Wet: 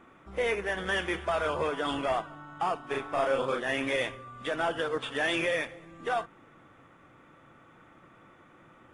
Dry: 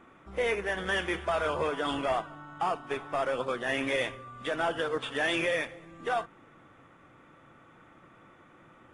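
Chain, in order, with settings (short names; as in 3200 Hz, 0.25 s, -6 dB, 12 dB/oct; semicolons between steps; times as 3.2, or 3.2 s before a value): 2.85–3.62 doubler 37 ms -2.5 dB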